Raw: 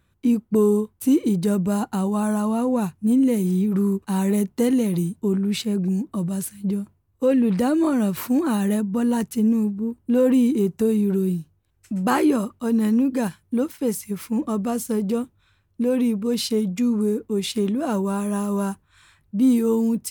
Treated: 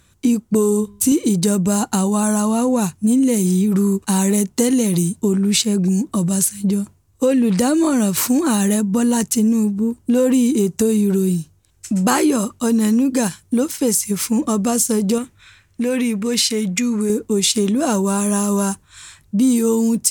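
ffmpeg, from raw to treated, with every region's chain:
ffmpeg -i in.wav -filter_complex "[0:a]asettb=1/sr,asplit=3[link_01][link_02][link_03];[link_01]atrim=end=0.524[link_04];[link_02]atrim=start=0.52:end=1.12,asetpts=PTS-STARTPTS,afade=type=in:duration=0.004:curve=qsin,afade=type=out:start_time=0.596:duration=0.004:curve=qsin,bandreject=frequency=203.5:width_type=h:width=4,bandreject=frequency=407:width_type=h:width=4,bandreject=frequency=610.5:width_type=h:width=4,bandreject=frequency=814:width_type=h:width=4,bandreject=frequency=1017.5:width_type=h:width=4,bandreject=frequency=1221:width_type=h:width=4,bandreject=frequency=1424.5:width_type=h:width=4,bandreject=frequency=1628:width_type=h:width=4,bandreject=frequency=1831.5:width_type=h:width=4,bandreject=frequency=2035:width_type=h:width=4,bandreject=frequency=2238.5:width_type=h:width=4,bandreject=frequency=2442:width_type=h:width=4,bandreject=frequency=2645.5:width_type=h:width=4,bandreject=frequency=2849:width_type=h:width=4,bandreject=frequency=3052.5:width_type=h:width=4,bandreject=frequency=3256:width_type=h:width=4,bandreject=frequency=3459.5:width_type=h:width=4,bandreject=frequency=3663:width_type=h:width=4,bandreject=frequency=3866.5:width_type=h:width=4,bandreject=frequency=4070:width_type=h:width=4,bandreject=frequency=4273.5:width_type=h:width=4,asubboost=boost=11:cutoff=180[link_05];[link_03]atrim=start=1.116[link_06];[link_04][link_05]acrossfade=duration=0.004:curve1=hsin:curve2=qsin[link_07];[link_07][link_06]acrossfade=duration=0.004:curve1=qsin:curve2=hsin,asettb=1/sr,asplit=3[link_08][link_09][link_10];[link_08]atrim=end=15.184[link_11];[link_09]atrim=start=15.18:end=17.1,asetpts=PTS-STARTPTS,afade=type=in:duration=0.004:curve=qsin,afade=type=out:start_time=1.916:duration=0.004:curve=qsin,equalizer=frequency=2000:width_type=o:width=1:gain=11,acompressor=threshold=-35dB:ratio=1.5:attack=3.2:release=140:knee=1:detection=peak[link_12];[link_10]atrim=start=17.096[link_13];[link_11][link_12]acrossfade=duration=0.004:curve1=hsin:curve2=qsin[link_14];[link_14][link_13]acrossfade=duration=0.004:curve1=qsin:curve2=hsin,equalizer=frequency=7100:width=0.73:gain=14,acompressor=threshold=-24dB:ratio=2.5,volume=8.5dB" out.wav

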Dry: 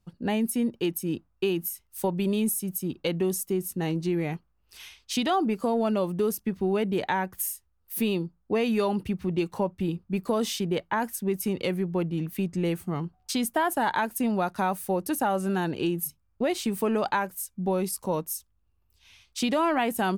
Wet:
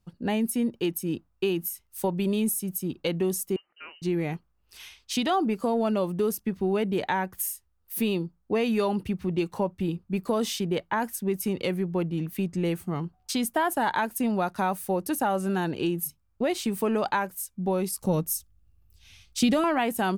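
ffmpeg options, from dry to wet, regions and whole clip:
ffmpeg -i in.wav -filter_complex "[0:a]asettb=1/sr,asplit=3[link_01][link_02][link_03];[link_01]atrim=end=3.564[link_04];[link_02]atrim=start=3.56:end=4.02,asetpts=PTS-STARTPTS,afade=type=in:duration=0.004:curve=qsin,afade=type=out:start_time=0.456:duration=0.004:curve=qsin,highpass=1200,highshelf=frequency=2100:gain=-8,lowpass=frequency=2700:width_type=q:width=0.5098,lowpass=frequency=2700:width_type=q:width=0.6013,lowpass=frequency=2700:width_type=q:width=0.9,lowpass=frequency=2700:width_type=q:width=2.563,afreqshift=-3200[link_05];[link_03]atrim=start=4.016[link_06];[link_04][link_05]acrossfade=duration=0.004:curve1=hsin:curve2=qsin[link_07];[link_07][link_06]acrossfade=duration=0.004:curve1=qsin:curve2=hsin,asettb=1/sr,asplit=3[link_08][link_09][link_10];[link_08]atrim=end=18.014[link_11];[link_09]atrim=start=18.01:end=19.64,asetpts=PTS-STARTPTS,afade=type=in:duration=0.004:curve=qsin,afade=type=out:start_time=1.626:duration=0.004:curve=qsin,asuperstop=centerf=1000:order=4:qfactor=6,bass=frequency=250:gain=10,treble=frequency=4000:gain=4[link_12];[link_10]atrim=start=19.636[link_13];[link_11][link_12]acrossfade=duration=0.004:curve1=hsin:curve2=qsin[link_14];[link_14][link_13]acrossfade=duration=0.004:curve1=qsin:curve2=hsin" out.wav

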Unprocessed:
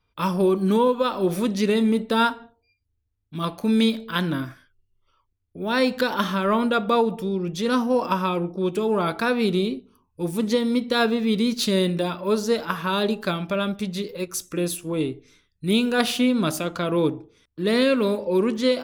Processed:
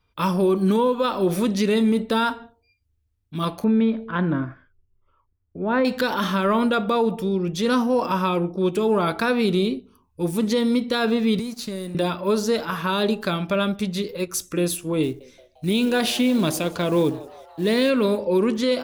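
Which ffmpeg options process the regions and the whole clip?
ffmpeg -i in.wav -filter_complex "[0:a]asettb=1/sr,asplit=3[link_01][link_02][link_03];[link_01]atrim=end=3.644[link_04];[link_02]atrim=start=3.64:end=5.85,asetpts=PTS-STARTPTS,afade=type=in:duration=0.004:curve=qsin,afade=type=out:start_time=2.206:duration=0.004:curve=qsin,lowpass=1700,aemphasis=mode=reproduction:type=50fm[link_05];[link_03]atrim=start=5.846[link_06];[link_04][link_05]acrossfade=duration=0.004:curve1=hsin:curve2=qsin[link_07];[link_07][link_06]acrossfade=duration=0.004:curve1=qsin:curve2=hsin,asettb=1/sr,asplit=3[link_08][link_09][link_10];[link_08]atrim=end=11.394[link_11];[link_09]atrim=start=11.39:end=11.95,asetpts=PTS-STARTPTS,afade=type=in:duration=0.004:curve=qsin,afade=type=out:start_time=0.556:duration=0.004:curve=qsin,equalizer=frequency=3300:width_type=o:width=0.45:gain=-7,acrossover=split=240|6200[link_12][link_13][link_14];[link_12]acompressor=threshold=-37dB:ratio=4[link_15];[link_13]acompressor=threshold=-36dB:ratio=4[link_16];[link_14]acompressor=threshold=-43dB:ratio=4[link_17];[link_15][link_16][link_17]amix=inputs=3:normalize=0,aeval=exprs='sgn(val(0))*max(abs(val(0))-0.00316,0)':channel_layout=same[link_18];[link_10]atrim=start=11.946[link_19];[link_11][link_18]acrossfade=duration=0.004:curve1=hsin:curve2=qsin[link_20];[link_20][link_19]acrossfade=duration=0.004:curve1=qsin:curve2=hsin,asettb=1/sr,asplit=3[link_21][link_22][link_23];[link_21]atrim=end=15.034[link_24];[link_22]atrim=start=15.03:end=17.9,asetpts=PTS-STARTPTS,afade=type=in:duration=0.004:curve=qsin,afade=type=out:start_time=2.866:duration=0.004:curve=qsin,equalizer=frequency=1300:width_type=o:width=0.23:gain=-9,asplit=6[link_25][link_26][link_27][link_28][link_29][link_30];[link_26]adelay=174,afreqshift=120,volume=-22.5dB[link_31];[link_27]adelay=348,afreqshift=240,volume=-26.5dB[link_32];[link_28]adelay=522,afreqshift=360,volume=-30.5dB[link_33];[link_29]adelay=696,afreqshift=480,volume=-34.5dB[link_34];[link_30]adelay=870,afreqshift=600,volume=-38.6dB[link_35];[link_25][link_31][link_32][link_33][link_34][link_35]amix=inputs=6:normalize=0,atrim=end_sample=126567,acrusher=bits=7:mode=log:mix=0:aa=0.000001[link_36];[link_23]atrim=start=17.896[link_37];[link_24][link_36]acrossfade=duration=0.004:curve1=hsin:curve2=qsin[link_38];[link_38][link_37]acrossfade=duration=0.004:curve1=qsin:curve2=hsin,equalizer=frequency=71:width=5.1:gain=5.5,alimiter=limit=-15dB:level=0:latency=1:release=28,volume=2.5dB" out.wav

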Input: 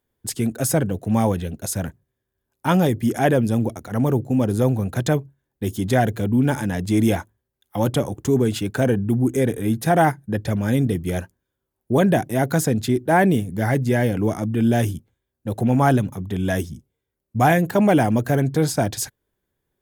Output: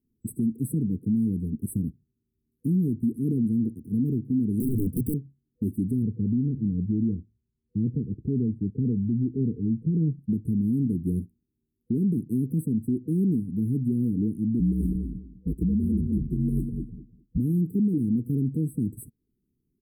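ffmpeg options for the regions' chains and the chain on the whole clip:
ffmpeg -i in.wav -filter_complex "[0:a]asettb=1/sr,asplit=3[link_01][link_02][link_03];[link_01]atrim=end=4.604[link_04];[link_02]atrim=start=4.6:end=5.14,asetpts=PTS-STARTPTS,afade=type=in:duration=0.004:curve=qsin,afade=type=out:start_time=0.536:duration=0.004:curve=qsin,bass=frequency=250:gain=10,treble=frequency=4000:gain=14,aeval=exprs='(mod(2.99*val(0)+1,2)-1)/2.99':channel_layout=same[link_05];[link_03]atrim=start=5.136[link_06];[link_04][link_05]acrossfade=duration=0.004:curve1=hsin:curve2=qsin[link_07];[link_07][link_06]acrossfade=duration=0.004:curve1=qsin:curve2=hsin,asettb=1/sr,asplit=3[link_08][link_09][link_10];[link_08]atrim=end=6.024[link_11];[link_09]atrim=start=6.02:end=10.19,asetpts=PTS-STARTPTS,afade=type=in:duration=0.004:curve=qsin,afade=type=out:start_time=4.166:duration=0.004:curve=qsin,lowpass=1000,aecho=1:1:1.7:0.41,atrim=end_sample=183897[link_12];[link_10]atrim=start=10.186[link_13];[link_11][link_12]acrossfade=duration=0.004:curve1=hsin:curve2=qsin[link_14];[link_14][link_13]acrossfade=duration=0.004:curve1=qsin:curve2=hsin,asettb=1/sr,asplit=3[link_15][link_16][link_17];[link_15]atrim=end=14.594[link_18];[link_16]atrim=start=14.59:end=17.38,asetpts=PTS-STARTPTS,afade=type=in:duration=0.004:curve=qsin,afade=type=out:start_time=2.786:duration=0.004:curve=qsin,afreqshift=-49,asplit=2[link_19][link_20];[link_20]adelay=203,lowpass=frequency=1800:poles=1,volume=-6.5dB,asplit=2[link_21][link_22];[link_22]adelay=203,lowpass=frequency=1800:poles=1,volume=0.16,asplit=2[link_23][link_24];[link_24]adelay=203,lowpass=frequency=1800:poles=1,volume=0.16[link_25];[link_19][link_21][link_23][link_25]amix=inputs=4:normalize=0,atrim=end_sample=123039[link_26];[link_17]atrim=start=17.376[link_27];[link_18][link_26]acrossfade=duration=0.004:curve1=hsin:curve2=qsin[link_28];[link_28][link_27]acrossfade=duration=0.004:curve1=qsin:curve2=hsin,afftfilt=real='re*(1-between(b*sr/4096,490,7800))':imag='im*(1-between(b*sr/4096,490,7800))':win_size=4096:overlap=0.75,firequalizer=gain_entry='entry(100,0);entry(230,9);entry(650,-25);entry(11000,-9)':delay=0.05:min_phase=1,alimiter=limit=-17.5dB:level=0:latency=1:release=469" out.wav

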